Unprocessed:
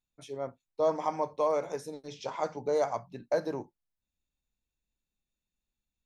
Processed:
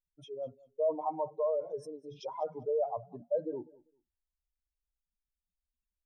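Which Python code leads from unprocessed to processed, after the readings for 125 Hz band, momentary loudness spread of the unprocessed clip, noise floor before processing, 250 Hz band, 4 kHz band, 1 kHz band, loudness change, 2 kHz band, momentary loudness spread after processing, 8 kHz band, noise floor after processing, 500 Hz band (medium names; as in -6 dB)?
-6.5 dB, 12 LU, under -85 dBFS, -5.5 dB, no reading, -5.0 dB, -3.0 dB, under -20 dB, 12 LU, under -10 dB, under -85 dBFS, -2.5 dB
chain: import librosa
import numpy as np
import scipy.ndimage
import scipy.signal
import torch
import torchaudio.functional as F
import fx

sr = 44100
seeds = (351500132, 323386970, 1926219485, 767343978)

p1 = fx.spec_expand(x, sr, power=2.5)
p2 = p1 + fx.echo_feedback(p1, sr, ms=197, feedback_pct=21, wet_db=-22.5, dry=0)
y = p2 * librosa.db_to_amplitude(-2.5)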